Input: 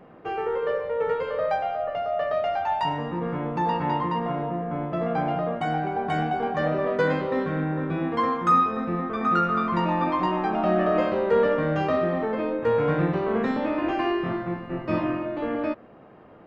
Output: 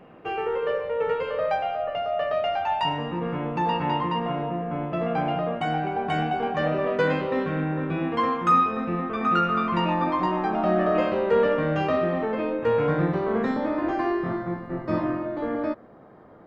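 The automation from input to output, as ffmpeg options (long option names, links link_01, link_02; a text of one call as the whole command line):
ffmpeg -i in.wav -af "asetnsamples=nb_out_samples=441:pad=0,asendcmd='9.94 equalizer g -3;10.95 equalizer g 4;12.87 equalizer g -6;13.54 equalizer g -13.5',equalizer=frequency=2700:width_type=o:width=0.34:gain=7.5" out.wav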